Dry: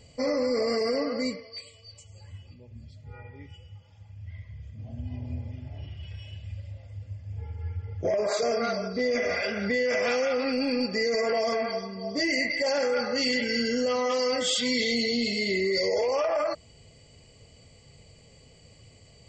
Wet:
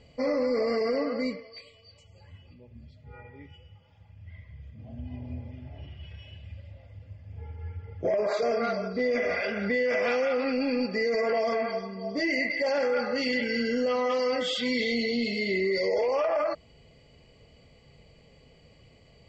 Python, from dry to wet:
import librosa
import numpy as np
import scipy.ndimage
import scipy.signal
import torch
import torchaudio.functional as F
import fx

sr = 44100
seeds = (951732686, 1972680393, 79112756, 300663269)

y = scipy.signal.sosfilt(scipy.signal.butter(2, 3400.0, 'lowpass', fs=sr, output='sos'), x)
y = fx.peak_eq(y, sr, hz=100.0, db=-7.5, octaves=0.51)